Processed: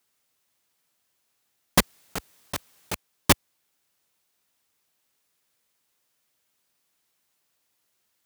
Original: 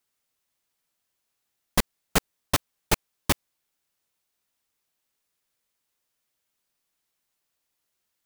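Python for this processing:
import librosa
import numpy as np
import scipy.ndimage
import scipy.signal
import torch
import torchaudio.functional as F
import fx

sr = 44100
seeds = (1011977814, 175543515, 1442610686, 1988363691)

y = scipy.signal.sosfilt(scipy.signal.butter(2, 71.0, 'highpass', fs=sr, output='sos'), x)
y = fx.over_compress(y, sr, threshold_db=-29.0, ratio=-0.5, at=(1.79, 2.94), fade=0.02)
y = y * 10.0 ** (5.5 / 20.0)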